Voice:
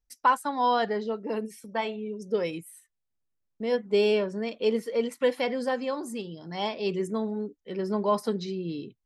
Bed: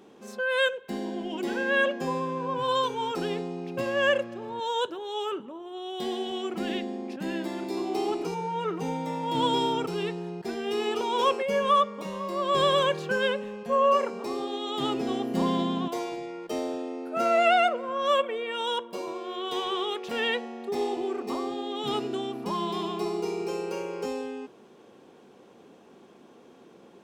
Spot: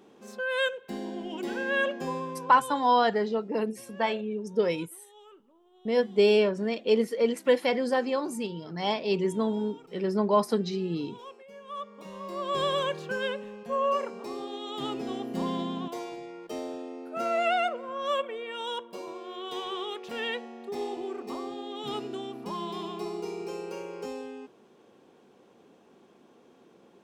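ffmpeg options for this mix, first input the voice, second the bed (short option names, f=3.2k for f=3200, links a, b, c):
-filter_complex "[0:a]adelay=2250,volume=2dB[a];[1:a]volume=14dB,afade=t=out:st=2.1:d=0.81:silence=0.112202,afade=t=in:st=11.67:d=0.66:silence=0.141254[b];[a][b]amix=inputs=2:normalize=0"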